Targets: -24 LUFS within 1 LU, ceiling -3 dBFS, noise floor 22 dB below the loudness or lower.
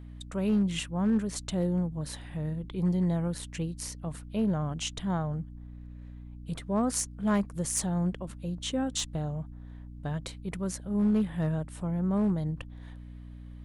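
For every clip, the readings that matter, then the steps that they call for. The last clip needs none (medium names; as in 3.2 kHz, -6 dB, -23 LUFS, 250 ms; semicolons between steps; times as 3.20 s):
clipped samples 0.4%; clipping level -20.0 dBFS; hum 60 Hz; highest harmonic 300 Hz; hum level -42 dBFS; loudness -31.0 LUFS; peak level -20.0 dBFS; loudness target -24.0 LUFS
-> clip repair -20 dBFS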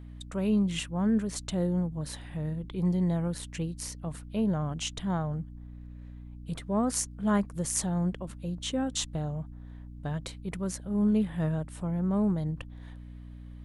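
clipped samples 0.0%; hum 60 Hz; highest harmonic 300 Hz; hum level -42 dBFS
-> hum notches 60/120/180/240/300 Hz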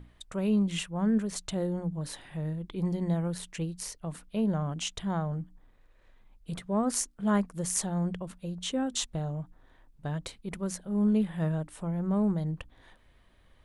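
hum not found; loudness -31.5 LUFS; peak level -13.5 dBFS; loudness target -24.0 LUFS
-> trim +7.5 dB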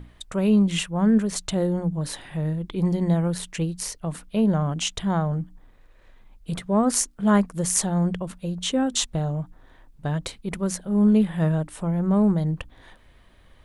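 loudness -24.0 LUFS; peak level -6.0 dBFS; noise floor -54 dBFS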